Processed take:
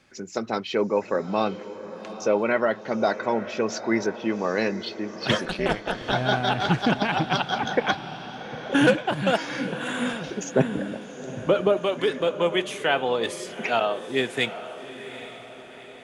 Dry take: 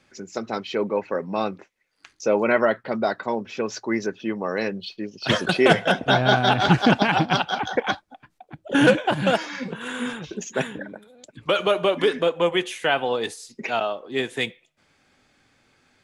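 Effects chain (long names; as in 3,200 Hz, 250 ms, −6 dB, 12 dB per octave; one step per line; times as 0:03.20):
0:10.52–0:11.77: tilt shelving filter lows +9.5 dB
speech leveller within 3 dB 0.5 s
0:05.45–0:06.13: amplitude modulation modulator 210 Hz, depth 100%
feedback delay with all-pass diffusion 804 ms, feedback 51%, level −13 dB
level −2 dB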